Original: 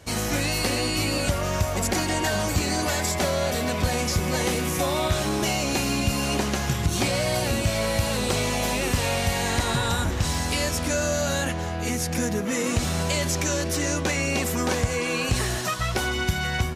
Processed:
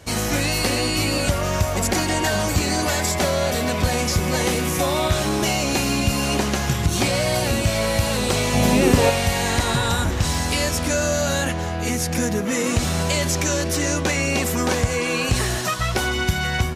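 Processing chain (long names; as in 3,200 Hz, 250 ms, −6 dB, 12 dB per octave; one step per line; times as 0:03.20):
0:08.53–0:09.09: parametric band 120 Hz → 490 Hz +10.5 dB 2.3 octaves
level +3.5 dB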